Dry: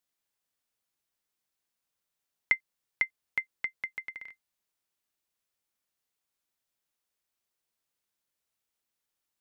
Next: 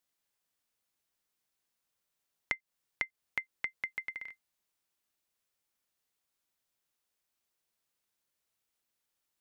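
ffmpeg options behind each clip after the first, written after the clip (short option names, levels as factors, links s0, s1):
-af "acompressor=threshold=0.0251:ratio=6,volume=1.12"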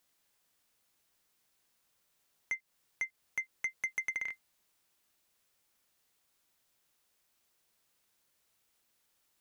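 -af "alimiter=limit=0.0631:level=0:latency=1:release=22,asoftclip=type=tanh:threshold=0.0158,volume=2.66"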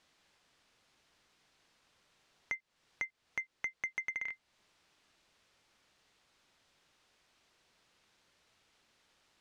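-af "acompressor=threshold=0.002:ratio=2,lowpass=4700,volume=2.99"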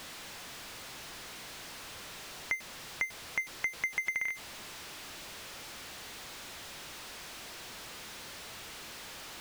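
-af "aeval=exprs='val(0)+0.5*0.00596*sgn(val(0))':c=same,volume=1.58"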